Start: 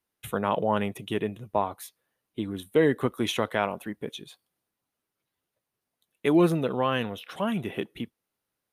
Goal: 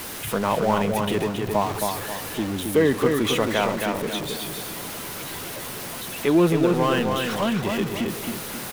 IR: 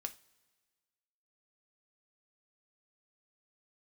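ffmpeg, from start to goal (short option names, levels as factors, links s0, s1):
-filter_complex "[0:a]aeval=exprs='val(0)+0.5*0.0355*sgn(val(0))':c=same,bandreject=f=60:t=h:w=6,bandreject=f=120:t=h:w=6,asplit=2[s0][s1];[s1]adelay=269,lowpass=f=4600:p=1,volume=0.631,asplit=2[s2][s3];[s3]adelay=269,lowpass=f=4600:p=1,volume=0.4,asplit=2[s4][s5];[s5]adelay=269,lowpass=f=4600:p=1,volume=0.4,asplit=2[s6][s7];[s7]adelay=269,lowpass=f=4600:p=1,volume=0.4,asplit=2[s8][s9];[s9]adelay=269,lowpass=f=4600:p=1,volume=0.4[s10];[s0][s2][s4][s6][s8][s10]amix=inputs=6:normalize=0,volume=1.19"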